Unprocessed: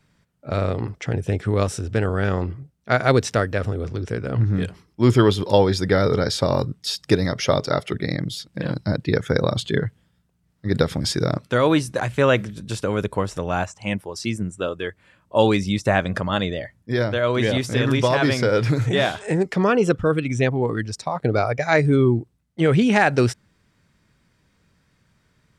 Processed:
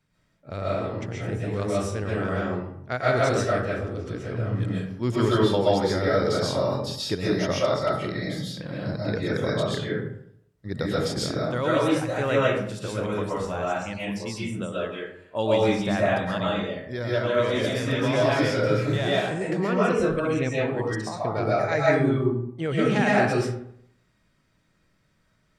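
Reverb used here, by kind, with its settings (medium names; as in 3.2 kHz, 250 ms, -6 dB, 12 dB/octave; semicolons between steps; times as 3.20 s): algorithmic reverb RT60 0.7 s, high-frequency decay 0.55×, pre-delay 90 ms, DRR -6.5 dB; trim -10.5 dB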